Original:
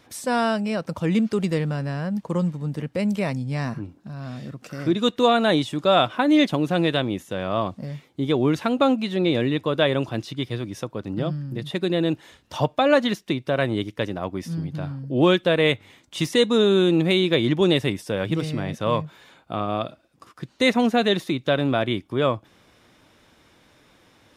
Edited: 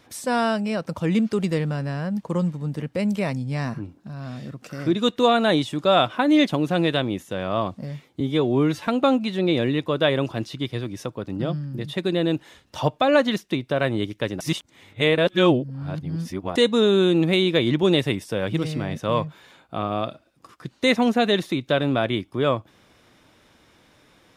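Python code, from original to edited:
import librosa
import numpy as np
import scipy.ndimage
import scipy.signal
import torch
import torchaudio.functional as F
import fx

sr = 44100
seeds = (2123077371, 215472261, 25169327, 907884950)

y = fx.edit(x, sr, fx.stretch_span(start_s=8.2, length_s=0.45, factor=1.5),
    fx.reverse_span(start_s=14.18, length_s=2.15), tone=tone)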